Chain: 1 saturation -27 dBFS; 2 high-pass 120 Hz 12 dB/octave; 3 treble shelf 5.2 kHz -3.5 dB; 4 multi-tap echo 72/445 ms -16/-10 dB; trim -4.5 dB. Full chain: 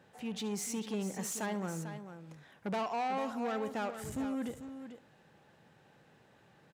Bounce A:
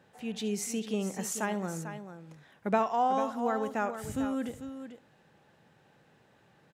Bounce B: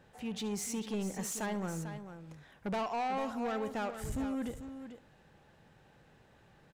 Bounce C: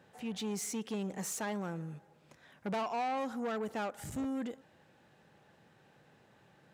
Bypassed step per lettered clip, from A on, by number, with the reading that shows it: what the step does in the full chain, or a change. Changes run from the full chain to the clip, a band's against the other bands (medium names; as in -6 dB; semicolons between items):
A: 1, distortion -8 dB; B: 2, crest factor change -3.0 dB; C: 4, echo-to-direct -9.0 dB to none